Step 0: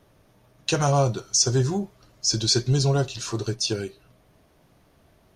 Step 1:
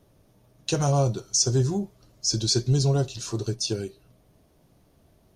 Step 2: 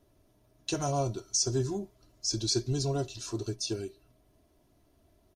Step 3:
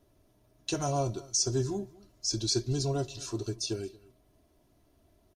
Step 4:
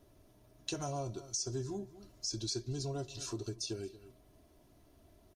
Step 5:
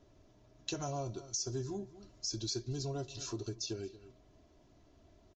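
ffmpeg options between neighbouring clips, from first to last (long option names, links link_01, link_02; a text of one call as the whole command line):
ffmpeg -i in.wav -af "equalizer=frequency=1700:width=0.53:gain=-8" out.wav
ffmpeg -i in.wav -af "aecho=1:1:3:0.52,volume=-6.5dB" out.wav
ffmpeg -i in.wav -filter_complex "[0:a]asplit=2[link_01][link_02];[link_02]adelay=227.4,volume=-22dB,highshelf=frequency=4000:gain=-5.12[link_03];[link_01][link_03]amix=inputs=2:normalize=0" out.wav
ffmpeg -i in.wav -af "acompressor=threshold=-43dB:ratio=2.5,volume=2.5dB" out.wav
ffmpeg -i in.wav -af "aresample=16000,aresample=44100" out.wav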